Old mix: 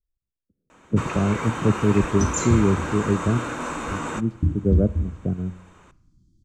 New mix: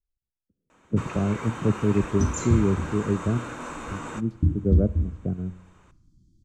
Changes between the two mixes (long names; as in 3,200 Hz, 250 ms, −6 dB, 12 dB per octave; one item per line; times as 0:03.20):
speech −3.0 dB
first sound −6.5 dB